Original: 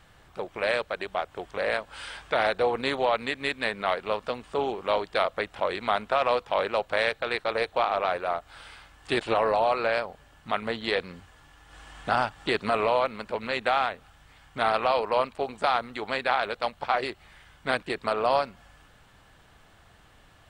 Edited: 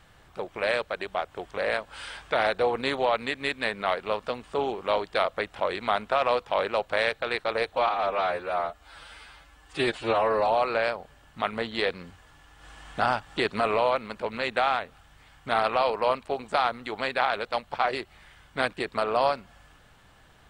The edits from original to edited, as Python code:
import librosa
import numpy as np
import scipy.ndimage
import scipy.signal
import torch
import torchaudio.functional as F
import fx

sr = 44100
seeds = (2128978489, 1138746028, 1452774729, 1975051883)

y = fx.edit(x, sr, fx.stretch_span(start_s=7.76, length_s=1.81, factor=1.5), tone=tone)